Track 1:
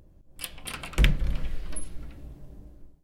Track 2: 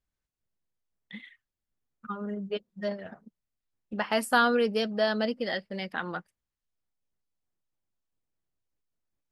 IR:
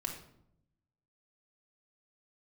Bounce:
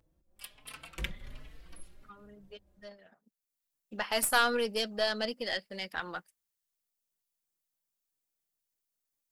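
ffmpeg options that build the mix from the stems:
-filter_complex "[0:a]lowshelf=frequency=410:gain=-8.5,asplit=2[link_01][link_02];[link_02]adelay=4.1,afreqshift=1.3[link_03];[link_01][link_03]amix=inputs=2:normalize=1,volume=-7dB[link_04];[1:a]lowshelf=frequency=170:gain=-11.5,crystalizer=i=3:c=0,aeval=exprs='0.422*(cos(1*acos(clip(val(0)/0.422,-1,1)))-cos(1*PI/2))+0.0473*(cos(4*acos(clip(val(0)/0.422,-1,1)))-cos(4*PI/2))':channel_layout=same,volume=-4.5dB,afade=type=in:start_time=3.19:duration=0.48:silence=0.251189,asplit=2[link_05][link_06];[link_06]apad=whole_len=134207[link_07];[link_04][link_07]sidechaincompress=threshold=-56dB:ratio=3:attack=34:release=208[link_08];[link_08][link_05]amix=inputs=2:normalize=0"

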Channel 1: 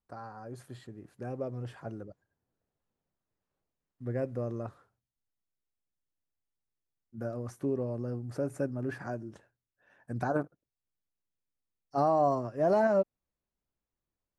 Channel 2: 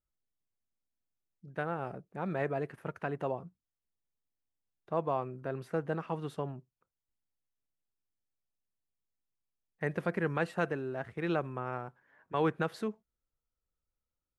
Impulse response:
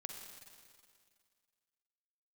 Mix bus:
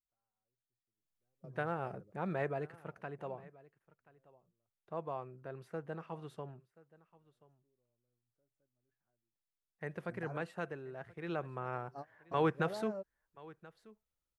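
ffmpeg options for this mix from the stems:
-filter_complex "[0:a]volume=-17dB[link_01];[1:a]volume=6dB,afade=type=in:start_time=0.93:duration=0.23:silence=0.251189,afade=type=out:start_time=2.29:duration=0.66:silence=0.446684,afade=type=in:start_time=11.22:duration=0.63:silence=0.421697,asplit=3[link_02][link_03][link_04];[link_03]volume=-21.5dB[link_05];[link_04]apad=whole_len=634168[link_06];[link_01][link_06]sidechaingate=range=-33dB:threshold=-58dB:ratio=16:detection=peak[link_07];[link_05]aecho=0:1:1030:1[link_08];[link_07][link_02][link_08]amix=inputs=3:normalize=0,equalizer=frequency=260:width=4.2:gain=-5"

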